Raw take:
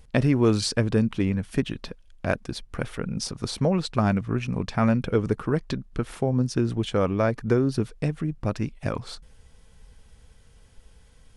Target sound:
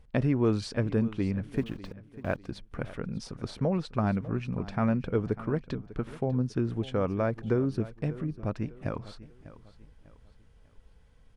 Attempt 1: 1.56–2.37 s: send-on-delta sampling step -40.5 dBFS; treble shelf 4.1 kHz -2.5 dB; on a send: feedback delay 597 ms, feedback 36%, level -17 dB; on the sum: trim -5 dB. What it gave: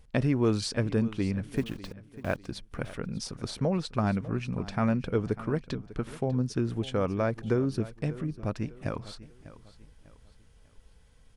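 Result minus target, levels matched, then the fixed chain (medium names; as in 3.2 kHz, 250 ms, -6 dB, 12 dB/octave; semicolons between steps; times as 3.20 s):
8 kHz band +8.5 dB
1.56–2.37 s: send-on-delta sampling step -40.5 dBFS; treble shelf 4.1 kHz -14 dB; on a send: feedback delay 597 ms, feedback 36%, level -17 dB; on the sum: trim -5 dB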